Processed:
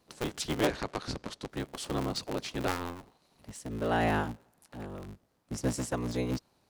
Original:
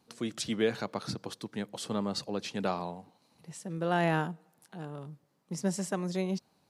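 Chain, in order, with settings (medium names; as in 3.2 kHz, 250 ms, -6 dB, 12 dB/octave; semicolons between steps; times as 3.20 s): cycle switcher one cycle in 3, inverted; 0.66–1.49 s: low-pass 8.3 kHz 12 dB/octave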